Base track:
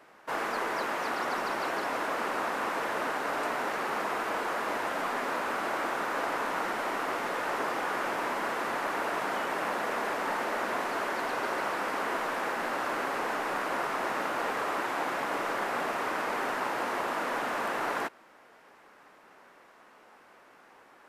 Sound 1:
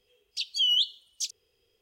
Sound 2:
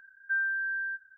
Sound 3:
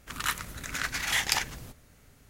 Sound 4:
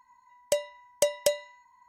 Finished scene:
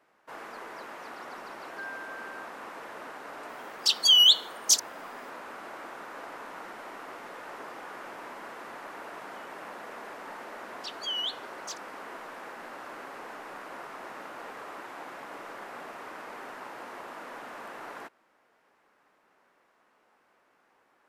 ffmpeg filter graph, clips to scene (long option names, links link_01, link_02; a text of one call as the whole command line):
ffmpeg -i bed.wav -i cue0.wav -i cue1.wav -filter_complex "[1:a]asplit=2[link_01][link_02];[0:a]volume=-11dB[link_03];[link_01]crystalizer=i=6:c=0[link_04];[2:a]atrim=end=1.17,asetpts=PTS-STARTPTS,volume=-12dB,afade=type=in:duration=0.004:curve=hsin,afade=type=out:start_time=1.166:duration=0.004:curve=hsin,adelay=1480[link_05];[link_04]atrim=end=1.81,asetpts=PTS-STARTPTS,volume=-3.5dB,afade=type=in:duration=0.004:curve=hsin,afade=type=out:start_time=1.806:duration=0.004:curve=hsin,adelay=153909S[link_06];[link_02]atrim=end=1.81,asetpts=PTS-STARTPTS,volume=-8.5dB,afade=type=in:duration=0.004:curve=hsin,afade=type=out:start_time=1.806:duration=0.004:curve=hsin,adelay=10470[link_07];[link_03][link_05][link_06][link_07]amix=inputs=4:normalize=0" out.wav